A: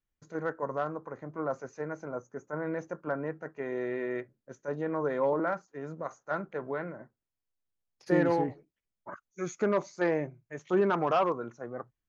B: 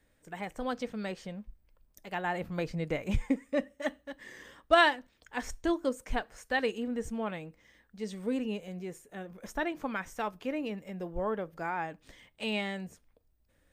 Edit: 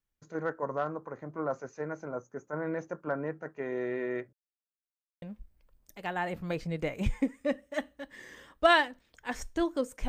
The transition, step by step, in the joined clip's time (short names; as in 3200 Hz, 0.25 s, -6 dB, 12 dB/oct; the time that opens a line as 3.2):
A
4.33–5.22 mute
5.22 switch to B from 1.3 s